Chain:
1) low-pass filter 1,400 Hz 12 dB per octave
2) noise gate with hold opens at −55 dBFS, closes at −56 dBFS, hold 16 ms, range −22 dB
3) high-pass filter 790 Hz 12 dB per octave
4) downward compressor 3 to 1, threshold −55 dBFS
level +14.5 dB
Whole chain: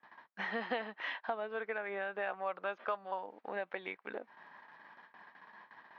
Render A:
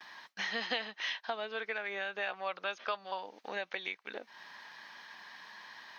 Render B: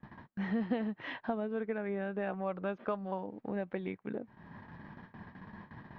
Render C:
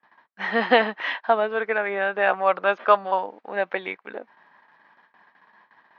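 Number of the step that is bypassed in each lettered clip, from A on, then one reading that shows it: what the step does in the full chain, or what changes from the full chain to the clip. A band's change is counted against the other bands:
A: 1, change in momentary loudness spread −4 LU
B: 3, 250 Hz band +18.0 dB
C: 4, average gain reduction 14.0 dB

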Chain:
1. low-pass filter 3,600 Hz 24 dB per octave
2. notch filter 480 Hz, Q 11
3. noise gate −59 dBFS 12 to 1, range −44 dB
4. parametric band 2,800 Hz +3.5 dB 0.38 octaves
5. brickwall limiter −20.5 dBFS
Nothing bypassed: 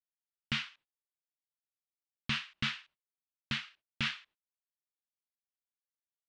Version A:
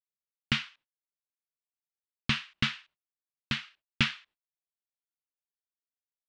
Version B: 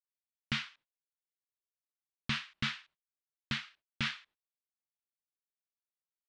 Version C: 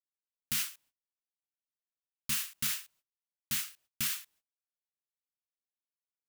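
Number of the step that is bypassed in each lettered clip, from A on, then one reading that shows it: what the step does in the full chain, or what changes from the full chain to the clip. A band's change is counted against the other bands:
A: 5, change in crest factor +6.0 dB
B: 4, 4 kHz band −2.0 dB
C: 1, 8 kHz band +25.0 dB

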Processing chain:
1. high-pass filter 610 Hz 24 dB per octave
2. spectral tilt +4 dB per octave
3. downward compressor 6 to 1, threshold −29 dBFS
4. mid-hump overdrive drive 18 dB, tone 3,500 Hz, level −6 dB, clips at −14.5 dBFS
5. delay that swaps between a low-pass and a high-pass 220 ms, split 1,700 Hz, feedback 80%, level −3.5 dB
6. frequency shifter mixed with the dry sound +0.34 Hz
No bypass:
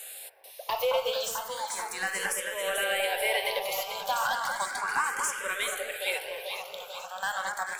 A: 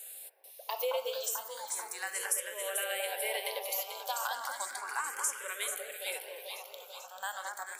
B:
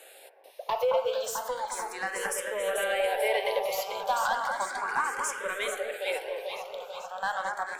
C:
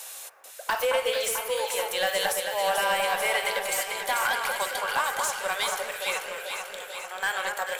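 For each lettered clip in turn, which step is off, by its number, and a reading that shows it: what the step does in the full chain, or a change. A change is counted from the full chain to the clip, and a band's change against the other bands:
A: 4, change in crest factor +4.5 dB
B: 2, 4 kHz band −6.5 dB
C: 6, change in integrated loudness +3.0 LU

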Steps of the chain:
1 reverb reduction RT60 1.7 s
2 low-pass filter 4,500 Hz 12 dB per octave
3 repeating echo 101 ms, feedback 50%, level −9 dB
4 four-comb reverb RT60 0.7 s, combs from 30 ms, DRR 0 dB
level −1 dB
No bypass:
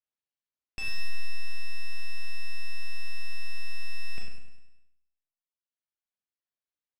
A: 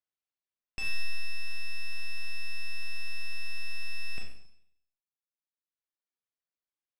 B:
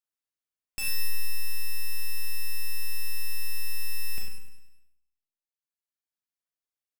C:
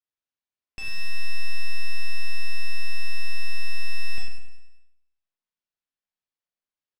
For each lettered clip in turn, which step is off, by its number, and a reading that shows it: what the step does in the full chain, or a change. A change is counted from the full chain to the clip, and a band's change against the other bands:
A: 3, change in momentary loudness spread −2 LU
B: 2, 4 kHz band +4.5 dB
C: 1, change in integrated loudness +6.0 LU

